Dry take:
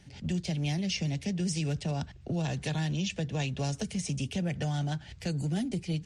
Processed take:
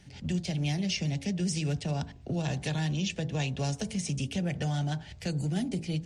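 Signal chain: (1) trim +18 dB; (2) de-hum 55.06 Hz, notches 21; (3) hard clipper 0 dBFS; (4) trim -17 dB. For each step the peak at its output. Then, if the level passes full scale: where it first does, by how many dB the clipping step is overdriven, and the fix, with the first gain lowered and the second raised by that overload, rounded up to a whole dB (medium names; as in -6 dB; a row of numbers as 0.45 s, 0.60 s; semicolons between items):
-2.0 dBFS, -1.5 dBFS, -1.5 dBFS, -18.5 dBFS; nothing clips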